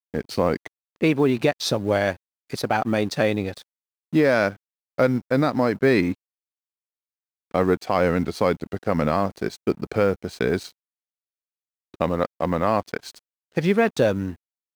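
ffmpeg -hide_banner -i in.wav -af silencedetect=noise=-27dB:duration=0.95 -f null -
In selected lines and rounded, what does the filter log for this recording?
silence_start: 6.12
silence_end: 7.55 | silence_duration: 1.42
silence_start: 10.66
silence_end: 12.01 | silence_duration: 1.35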